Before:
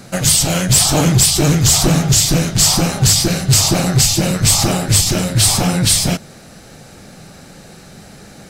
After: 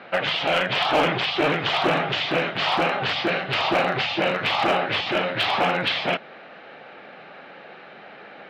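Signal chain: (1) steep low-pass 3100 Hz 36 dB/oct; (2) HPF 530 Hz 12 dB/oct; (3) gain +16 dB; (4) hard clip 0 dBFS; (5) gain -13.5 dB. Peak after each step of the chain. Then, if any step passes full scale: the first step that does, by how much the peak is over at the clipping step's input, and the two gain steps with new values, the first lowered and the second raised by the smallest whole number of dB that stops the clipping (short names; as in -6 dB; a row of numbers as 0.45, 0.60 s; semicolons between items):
-5.5, -8.0, +8.0, 0.0, -13.5 dBFS; step 3, 8.0 dB; step 3 +8 dB, step 5 -5.5 dB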